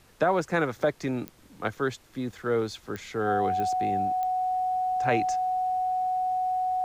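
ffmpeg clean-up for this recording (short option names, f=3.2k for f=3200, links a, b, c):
-af "adeclick=t=4,bandreject=f=740:w=30,agate=range=-21dB:threshold=-46dB"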